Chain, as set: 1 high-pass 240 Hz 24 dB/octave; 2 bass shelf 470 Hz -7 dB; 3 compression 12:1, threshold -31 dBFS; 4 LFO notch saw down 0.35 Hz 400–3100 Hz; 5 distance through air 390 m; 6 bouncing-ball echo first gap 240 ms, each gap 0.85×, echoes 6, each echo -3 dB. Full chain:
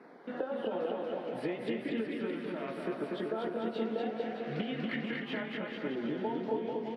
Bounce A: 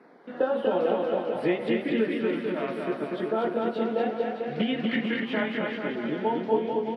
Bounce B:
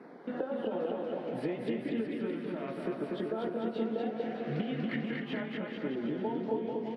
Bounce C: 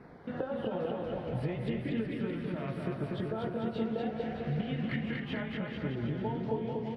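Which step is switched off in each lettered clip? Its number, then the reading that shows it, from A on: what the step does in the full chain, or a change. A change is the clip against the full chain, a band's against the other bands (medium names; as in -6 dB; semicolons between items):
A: 3, mean gain reduction 5.5 dB; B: 2, 125 Hz band +4.5 dB; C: 1, 125 Hz band +12.0 dB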